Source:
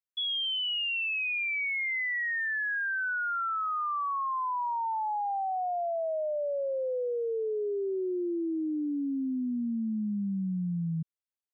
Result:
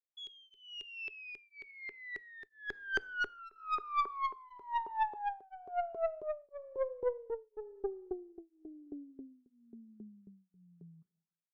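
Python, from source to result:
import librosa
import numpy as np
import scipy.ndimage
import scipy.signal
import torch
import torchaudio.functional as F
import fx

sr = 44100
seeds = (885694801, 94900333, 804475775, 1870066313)

y = fx.tilt_eq(x, sr, slope=-4.5, at=(1.71, 3.39))
y = fx.filter_lfo_bandpass(y, sr, shape='saw_up', hz=3.7, low_hz=390.0, high_hz=1600.0, q=7.8)
y = fx.high_shelf(y, sr, hz=2200.0, db=12.0)
y = fx.tube_stage(y, sr, drive_db=30.0, bias=0.5)
y = fx.rev_double_slope(y, sr, seeds[0], early_s=0.75, late_s=2.6, knee_db=-18, drr_db=19.0)
y = y * np.abs(np.cos(np.pi * 1.0 * np.arange(len(y)) / sr))
y = y * 10.0 ** (6.5 / 20.0)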